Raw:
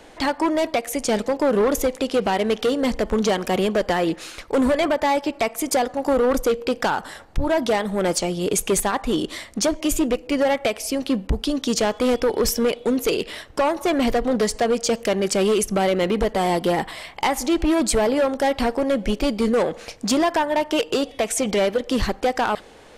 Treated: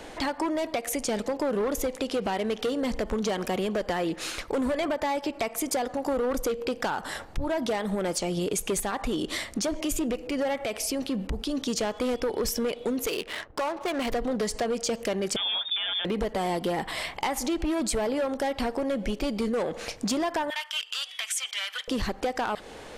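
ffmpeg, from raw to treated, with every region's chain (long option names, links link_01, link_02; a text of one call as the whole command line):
ffmpeg -i in.wav -filter_complex "[0:a]asettb=1/sr,asplit=3[link_01][link_02][link_03];[link_01]atrim=end=8.814[link_04];[link_02]atrim=start=8.81:end=11.68,asetpts=PTS-STARTPTS,afade=type=in:duration=0.004:curve=qsin,afade=type=out:start_time=2.866:duration=0.004:curve=qsin,bandreject=frequency=1000:width=25,acompressor=threshold=-25dB:ratio=3:attack=3.2:release=140:knee=1:detection=peak[link_05];[link_03]atrim=start=11.676[link_06];[link_04][link_05]acrossfade=duration=0.004:curve1=hsin:curve2=qsin[link_07];[link_07][link_06]acrossfade=duration=0.004:curve1=qsin:curve2=hsin,asettb=1/sr,asplit=3[link_08][link_09][link_10];[link_08]atrim=end=13.064[link_11];[link_09]atrim=start=13.06:end=14.12,asetpts=PTS-STARTPTS,afade=type=in:duration=0.004:curve=qsin,afade=type=out:start_time=1.056:duration=0.004:curve=qsin,lowshelf=frequency=490:gain=-9.5,adynamicsmooth=sensitivity=7.5:basefreq=710[link_12];[link_10]atrim=start=14.116[link_13];[link_11][link_12]acrossfade=duration=0.004:curve1=hsin:curve2=qsin[link_14];[link_14][link_13]acrossfade=duration=0.004:curve1=qsin:curve2=hsin,asettb=1/sr,asplit=3[link_15][link_16][link_17];[link_15]atrim=end=15.364[link_18];[link_16]atrim=start=15.36:end=16.05,asetpts=PTS-STARTPTS,afade=type=in:duration=0.004:curve=qsin,afade=type=out:start_time=0.686:duration=0.004:curve=qsin,equalizer=frequency=550:width=1.8:gain=-10,lowpass=frequency=3100:width_type=q:width=0.5098,lowpass=frequency=3100:width_type=q:width=0.6013,lowpass=frequency=3100:width_type=q:width=0.9,lowpass=frequency=3100:width_type=q:width=2.563,afreqshift=-3700[link_19];[link_17]atrim=start=16.046[link_20];[link_18][link_19]acrossfade=duration=0.004:curve1=hsin:curve2=qsin[link_21];[link_21][link_20]acrossfade=duration=0.004:curve1=qsin:curve2=hsin,asettb=1/sr,asplit=3[link_22][link_23][link_24];[link_22]atrim=end=20.504[link_25];[link_23]atrim=start=20.5:end=21.88,asetpts=PTS-STARTPTS,afade=type=in:duration=0.004:curve=qsin,afade=type=out:start_time=1.376:duration=0.004:curve=qsin,highpass=frequency=1300:width=0.5412,highpass=frequency=1300:width=1.3066,equalizer=frequency=3200:width=6.7:gain=8[link_26];[link_24]atrim=start=21.876[link_27];[link_25][link_26]acrossfade=duration=0.004:curve1=hsin:curve2=qsin[link_28];[link_28][link_27]acrossfade=duration=0.004:curve1=qsin:curve2=hsin,alimiter=limit=-22.5dB:level=0:latency=1:release=178,acompressor=threshold=-28dB:ratio=6,volume=3.5dB" out.wav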